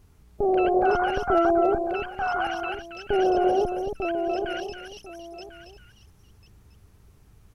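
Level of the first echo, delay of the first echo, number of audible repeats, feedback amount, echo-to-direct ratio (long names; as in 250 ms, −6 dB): −7.5 dB, 276 ms, 3, repeats not evenly spaced, −6.5 dB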